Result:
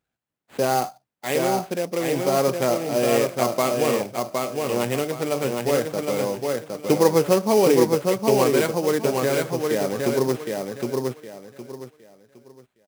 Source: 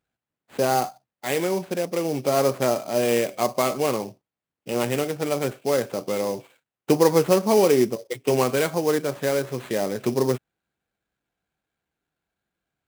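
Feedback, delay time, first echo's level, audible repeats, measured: 27%, 763 ms, −3.5 dB, 3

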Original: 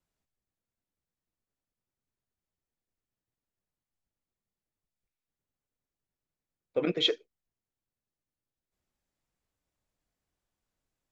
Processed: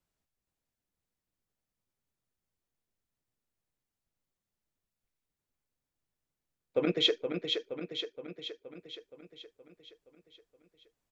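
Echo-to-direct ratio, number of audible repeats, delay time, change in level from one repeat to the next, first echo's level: −4.0 dB, 7, 471 ms, −4.5 dB, −6.0 dB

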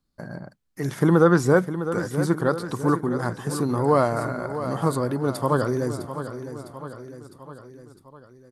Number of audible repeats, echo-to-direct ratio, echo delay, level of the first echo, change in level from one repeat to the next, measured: 4, −9.5 dB, 656 ms, −11.0 dB, −5.0 dB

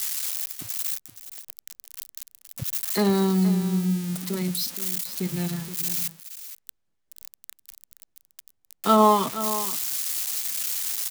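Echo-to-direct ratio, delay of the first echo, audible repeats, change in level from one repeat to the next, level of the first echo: −12.5 dB, 472 ms, 1, repeats not evenly spaced, −12.5 dB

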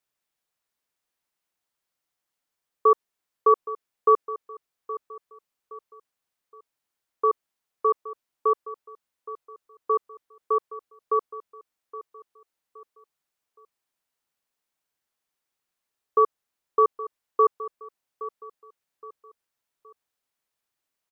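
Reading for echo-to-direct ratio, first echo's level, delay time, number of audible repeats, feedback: −15.0 dB, −15.5 dB, 819 ms, 3, 37%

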